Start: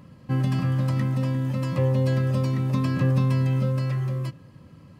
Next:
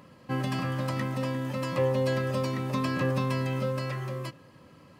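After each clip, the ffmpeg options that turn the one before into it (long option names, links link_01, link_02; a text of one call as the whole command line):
ffmpeg -i in.wav -af "bass=frequency=250:gain=-13,treble=frequency=4000:gain=-1,volume=2.5dB" out.wav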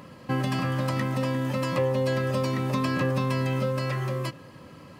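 ffmpeg -i in.wav -af "acompressor=threshold=-33dB:ratio=2,volume=7dB" out.wav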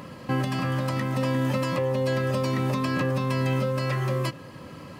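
ffmpeg -i in.wav -af "alimiter=limit=-21.5dB:level=0:latency=1:release=481,volume=5dB" out.wav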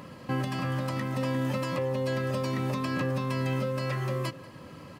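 ffmpeg -i in.wav -filter_complex "[0:a]asplit=2[link_01][link_02];[link_02]adelay=186.6,volume=-19dB,highshelf=frequency=4000:gain=-4.2[link_03];[link_01][link_03]amix=inputs=2:normalize=0,volume=-4dB" out.wav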